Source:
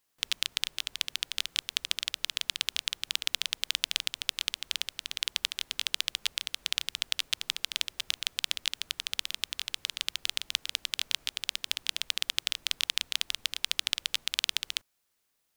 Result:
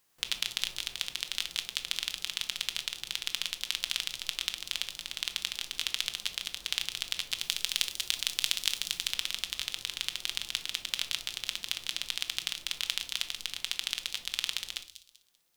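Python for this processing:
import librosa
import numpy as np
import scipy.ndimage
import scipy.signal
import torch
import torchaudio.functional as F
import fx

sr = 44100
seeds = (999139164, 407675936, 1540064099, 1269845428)

y = fx.hpss(x, sr, part='percussive', gain_db=-10)
y = fx.echo_wet_highpass(y, sr, ms=194, feedback_pct=31, hz=4800.0, wet_db=-7)
y = fx.rider(y, sr, range_db=10, speed_s=2.0)
y = fx.high_shelf(y, sr, hz=3800.0, db=7.0, at=(7.41, 9.08))
y = fx.room_shoebox(y, sr, seeds[0], volume_m3=440.0, walls='furnished', distance_m=0.87)
y = y * 10.0 ** (6.0 / 20.0)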